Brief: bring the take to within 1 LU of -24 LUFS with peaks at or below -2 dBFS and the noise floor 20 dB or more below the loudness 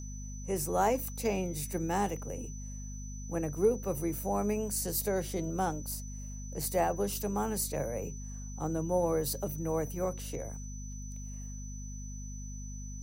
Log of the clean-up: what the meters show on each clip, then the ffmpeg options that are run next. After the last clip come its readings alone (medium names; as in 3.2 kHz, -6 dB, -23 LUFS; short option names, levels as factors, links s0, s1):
hum 50 Hz; highest harmonic 250 Hz; hum level -39 dBFS; steady tone 6 kHz; tone level -48 dBFS; loudness -34.5 LUFS; peak level -16.0 dBFS; loudness target -24.0 LUFS
-> -af "bandreject=f=50:t=h:w=6,bandreject=f=100:t=h:w=6,bandreject=f=150:t=h:w=6,bandreject=f=200:t=h:w=6,bandreject=f=250:t=h:w=6"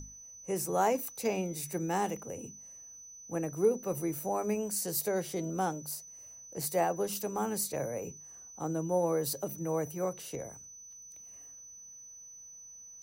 hum not found; steady tone 6 kHz; tone level -48 dBFS
-> -af "bandreject=f=6000:w=30"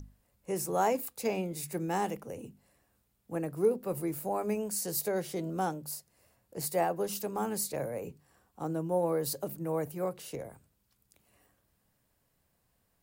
steady tone not found; loudness -33.5 LUFS; peak level -16.5 dBFS; loudness target -24.0 LUFS
-> -af "volume=2.99"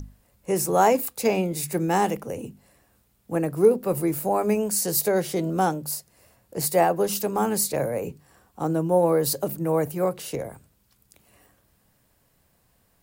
loudness -24.0 LUFS; peak level -7.0 dBFS; noise floor -66 dBFS